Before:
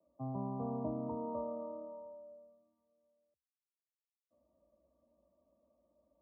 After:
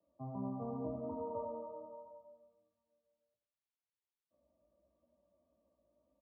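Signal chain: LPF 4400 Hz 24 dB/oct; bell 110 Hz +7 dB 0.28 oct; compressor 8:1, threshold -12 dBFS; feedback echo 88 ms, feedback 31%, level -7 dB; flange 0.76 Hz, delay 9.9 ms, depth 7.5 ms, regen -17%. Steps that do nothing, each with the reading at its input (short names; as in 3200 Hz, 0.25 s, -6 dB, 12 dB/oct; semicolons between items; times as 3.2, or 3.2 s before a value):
LPF 4400 Hz: input band ends at 1200 Hz; compressor, threshold -12 dBFS: input peak -26.5 dBFS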